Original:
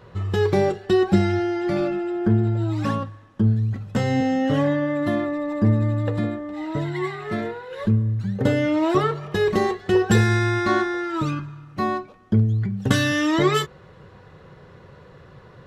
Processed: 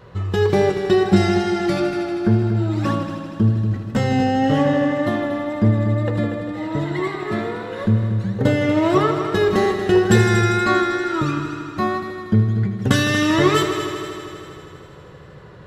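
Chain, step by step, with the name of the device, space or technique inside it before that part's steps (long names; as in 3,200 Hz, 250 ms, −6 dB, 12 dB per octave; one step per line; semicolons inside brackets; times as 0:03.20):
0:01.16–0:01.80: high-shelf EQ 3,600 Hz +10.5 dB
multi-head tape echo (echo machine with several playback heads 79 ms, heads all three, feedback 67%, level −13 dB; tape wow and flutter 18 cents)
level +2.5 dB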